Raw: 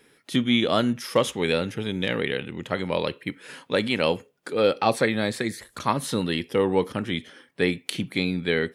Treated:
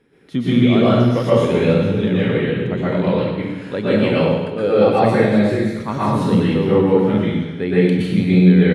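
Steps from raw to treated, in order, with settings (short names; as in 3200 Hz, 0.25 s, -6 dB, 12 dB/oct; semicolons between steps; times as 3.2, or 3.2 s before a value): LPF 2400 Hz 6 dB/oct; low shelf 440 Hz +10 dB; feedback echo 99 ms, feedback 58%, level -13 dB; plate-style reverb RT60 1.1 s, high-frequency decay 0.95×, pre-delay 0.105 s, DRR -9 dB; gain -5.5 dB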